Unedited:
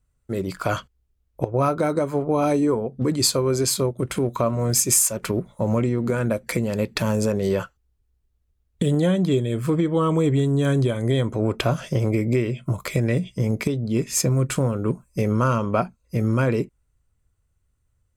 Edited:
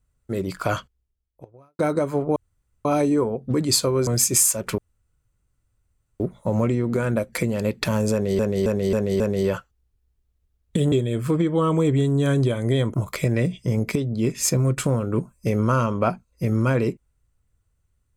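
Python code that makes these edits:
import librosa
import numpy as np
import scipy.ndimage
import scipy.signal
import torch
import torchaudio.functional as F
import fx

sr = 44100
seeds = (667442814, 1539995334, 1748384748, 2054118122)

y = fx.edit(x, sr, fx.fade_out_span(start_s=0.74, length_s=1.05, curve='qua'),
    fx.insert_room_tone(at_s=2.36, length_s=0.49),
    fx.cut(start_s=3.58, length_s=1.05),
    fx.insert_room_tone(at_s=5.34, length_s=1.42),
    fx.repeat(start_s=7.26, length_s=0.27, count=5),
    fx.cut(start_s=8.98, length_s=0.33),
    fx.cut(start_s=11.33, length_s=1.33), tone=tone)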